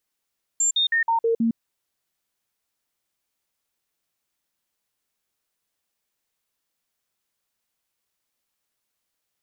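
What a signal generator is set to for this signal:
stepped sweep 7,330 Hz down, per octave 1, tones 6, 0.11 s, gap 0.05 s −17.5 dBFS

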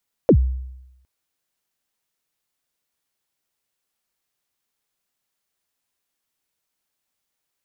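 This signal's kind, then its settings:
synth kick length 0.76 s, from 590 Hz, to 64 Hz, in 76 ms, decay 0.91 s, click off, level −7 dB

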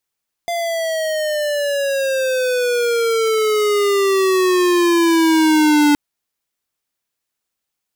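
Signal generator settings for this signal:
pitch glide with a swell square, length 5.47 s, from 692 Hz, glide −15 semitones, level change +9 dB, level −12 dB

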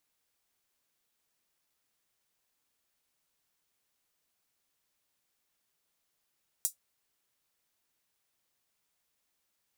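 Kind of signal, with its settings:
closed synth hi-hat, high-pass 7,400 Hz, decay 0.12 s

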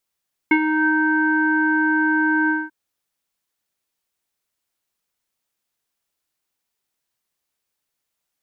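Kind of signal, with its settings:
subtractive voice square D#4 24 dB per octave, low-pass 1,500 Hz, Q 6.5, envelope 0.5 octaves, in 0.40 s, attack 5 ms, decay 0.07 s, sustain −7 dB, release 0.21 s, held 1.98 s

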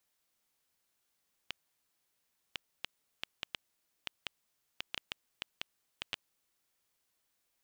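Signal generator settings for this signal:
Geiger counter clicks 3.3 per second −18 dBFS 5.09 s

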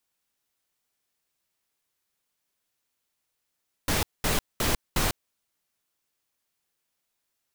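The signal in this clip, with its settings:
noise bursts pink, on 0.15 s, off 0.21 s, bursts 4, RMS −24.5 dBFS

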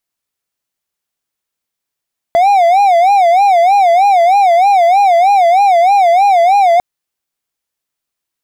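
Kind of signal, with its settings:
siren wail 674–815 Hz 3.2 per second triangle −3.5 dBFS 4.45 s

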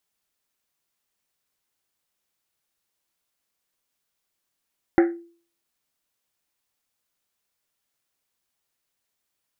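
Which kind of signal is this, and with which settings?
drum after Risset, pitch 340 Hz, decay 0.45 s, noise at 1,700 Hz, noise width 690 Hz, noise 15%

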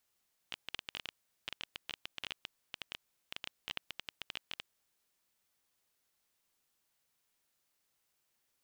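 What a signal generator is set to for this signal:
Geiger counter clicks 12 per second −22 dBFS 4.40 s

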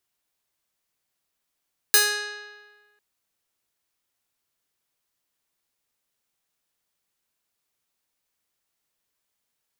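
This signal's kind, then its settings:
Karplus-Strong string G#4, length 1.05 s, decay 1.42 s, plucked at 0.37, bright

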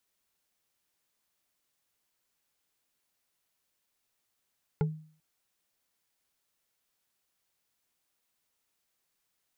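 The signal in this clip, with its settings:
struck wood bar, length 0.39 s, lowest mode 156 Hz, decay 0.47 s, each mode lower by 5 dB, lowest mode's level −22 dB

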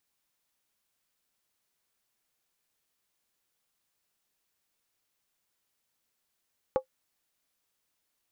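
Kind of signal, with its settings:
struck skin, lowest mode 522 Hz, decay 0.10 s, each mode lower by 8 dB, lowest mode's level −17.5 dB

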